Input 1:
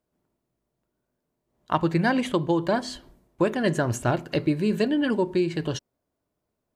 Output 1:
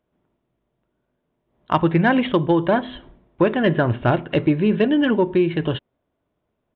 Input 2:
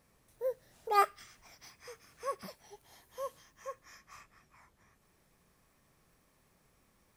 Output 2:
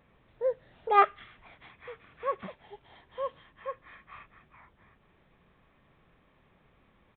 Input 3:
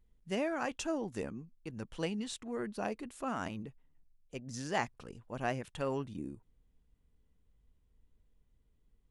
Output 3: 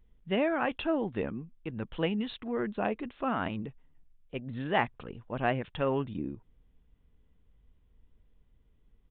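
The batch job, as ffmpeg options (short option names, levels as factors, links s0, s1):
-af "aresample=8000,aresample=44100,asoftclip=type=tanh:threshold=0.335,volume=2"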